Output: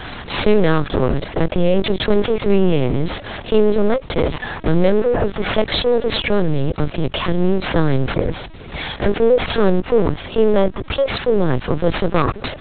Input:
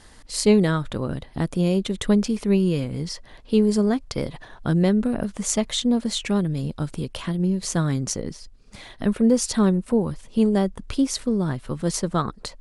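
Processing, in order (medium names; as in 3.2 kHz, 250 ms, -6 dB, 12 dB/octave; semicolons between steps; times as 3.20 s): comb filter that takes the minimum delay 1.8 ms; high-pass 120 Hz 12 dB/octave; bass shelf 180 Hz +5.5 dB; companded quantiser 6-bit; LPC vocoder at 8 kHz pitch kept; level flattener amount 50%; trim +3 dB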